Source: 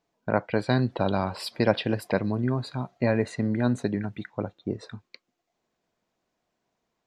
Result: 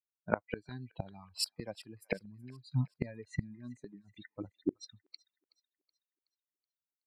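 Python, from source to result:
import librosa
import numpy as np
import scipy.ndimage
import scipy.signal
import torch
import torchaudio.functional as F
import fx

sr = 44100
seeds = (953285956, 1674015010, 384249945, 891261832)

p1 = fx.bin_expand(x, sr, power=2.0)
p2 = fx.noise_reduce_blind(p1, sr, reduce_db=16)
p3 = fx.gate_flip(p2, sr, shuts_db=-28.0, range_db=-29)
p4 = p3 + fx.echo_wet_highpass(p3, sr, ms=374, feedback_pct=44, hz=1400.0, wet_db=-21.5, dry=0)
y = F.gain(torch.from_numpy(p4), 10.0).numpy()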